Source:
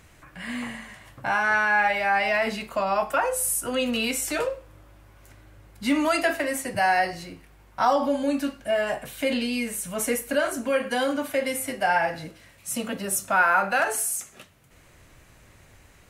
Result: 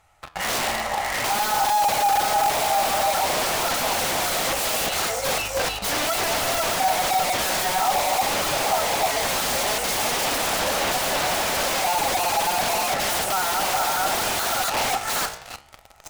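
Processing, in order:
delay that plays each chunk backwards 489 ms, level −1 dB
echo through a band-pass that steps 307 ms, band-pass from 660 Hz, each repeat 1.4 octaves, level −1 dB
treble cut that deepens with the level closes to 1,400 Hz, closed at −16.5 dBFS
parametric band 260 Hz −12.5 dB 2.1 octaves
notch filter 1,600 Hz, Q 8.2
hollow resonant body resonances 830/1,300 Hz, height 12 dB, ringing for 30 ms
leveller curve on the samples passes 5
wrap-around overflow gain 13 dB
flanger 0.56 Hz, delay 9.2 ms, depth 9.7 ms, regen +86%
soft clipping −29.5 dBFS, distortion −8 dB
parametric band 700 Hz +8.5 dB 0.94 octaves
level +6.5 dB

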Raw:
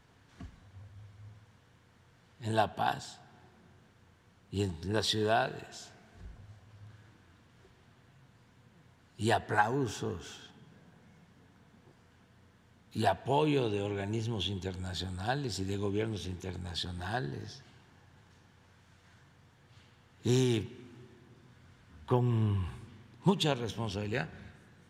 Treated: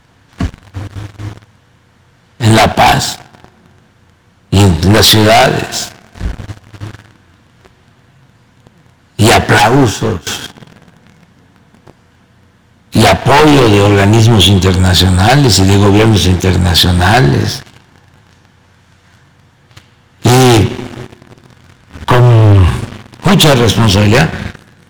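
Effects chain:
notch filter 420 Hz, Q 12
leveller curve on the samples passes 3
sine wavefolder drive 8 dB, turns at −11.5 dBFS
0:09.58–0:10.27: expander for the loud parts 2.5 to 1, over −26 dBFS
level +9 dB

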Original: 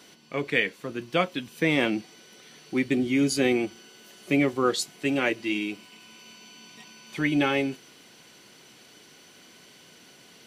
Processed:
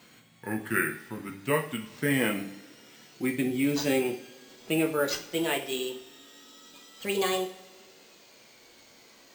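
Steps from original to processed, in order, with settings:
gliding playback speed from 71% → 153%
bad sample-rate conversion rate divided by 4×, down none, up hold
coupled-rooms reverb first 0.42 s, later 1.8 s, from −18 dB, DRR 3.5 dB
level −4.5 dB

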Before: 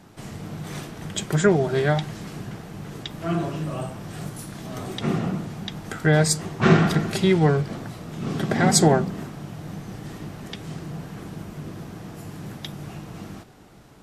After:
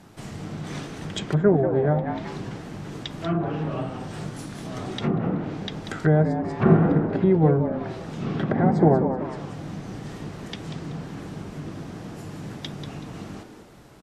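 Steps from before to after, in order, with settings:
echo with shifted repeats 189 ms, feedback 31%, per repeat +120 Hz, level −9 dB
treble cut that deepens with the level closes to 890 Hz, closed at −18.5 dBFS

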